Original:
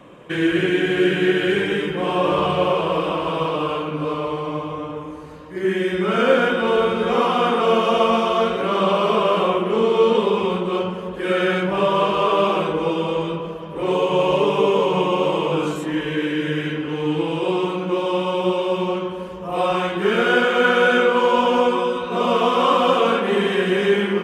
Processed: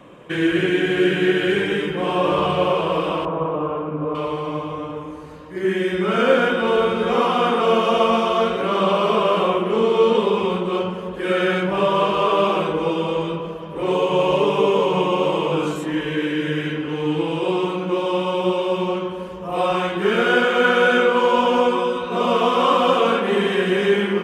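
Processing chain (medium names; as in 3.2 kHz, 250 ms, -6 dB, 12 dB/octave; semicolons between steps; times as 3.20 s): 3.25–4.15 s: low-pass 1.2 kHz 12 dB/octave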